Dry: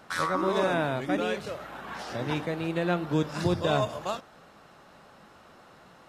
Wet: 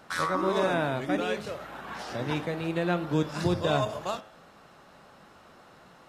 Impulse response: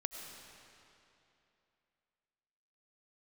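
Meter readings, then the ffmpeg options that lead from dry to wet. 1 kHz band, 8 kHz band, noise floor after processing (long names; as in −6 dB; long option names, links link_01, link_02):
−0.5 dB, 0.0 dB, −55 dBFS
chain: -af "bandreject=frequency=107:width_type=h:width=4,bandreject=frequency=214:width_type=h:width=4,bandreject=frequency=321:width_type=h:width=4,bandreject=frequency=428:width_type=h:width=4,bandreject=frequency=535:width_type=h:width=4,bandreject=frequency=642:width_type=h:width=4,bandreject=frequency=749:width_type=h:width=4,bandreject=frequency=856:width_type=h:width=4,bandreject=frequency=963:width_type=h:width=4,bandreject=frequency=1070:width_type=h:width=4,bandreject=frequency=1177:width_type=h:width=4,bandreject=frequency=1284:width_type=h:width=4,bandreject=frequency=1391:width_type=h:width=4,bandreject=frequency=1498:width_type=h:width=4,bandreject=frequency=1605:width_type=h:width=4,bandreject=frequency=1712:width_type=h:width=4,bandreject=frequency=1819:width_type=h:width=4,bandreject=frequency=1926:width_type=h:width=4,bandreject=frequency=2033:width_type=h:width=4,bandreject=frequency=2140:width_type=h:width=4,bandreject=frequency=2247:width_type=h:width=4,bandreject=frequency=2354:width_type=h:width=4,bandreject=frequency=2461:width_type=h:width=4,bandreject=frequency=2568:width_type=h:width=4,bandreject=frequency=2675:width_type=h:width=4,bandreject=frequency=2782:width_type=h:width=4,bandreject=frequency=2889:width_type=h:width=4,bandreject=frequency=2996:width_type=h:width=4,bandreject=frequency=3103:width_type=h:width=4,bandreject=frequency=3210:width_type=h:width=4,bandreject=frequency=3317:width_type=h:width=4,bandreject=frequency=3424:width_type=h:width=4,bandreject=frequency=3531:width_type=h:width=4"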